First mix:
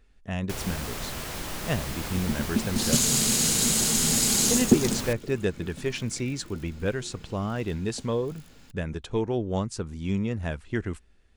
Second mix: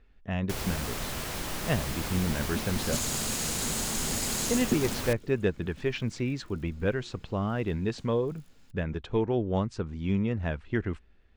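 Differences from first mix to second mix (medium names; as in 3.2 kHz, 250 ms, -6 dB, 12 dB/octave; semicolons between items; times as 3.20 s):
speech: add low-pass 3.4 kHz 12 dB/octave; second sound -9.5 dB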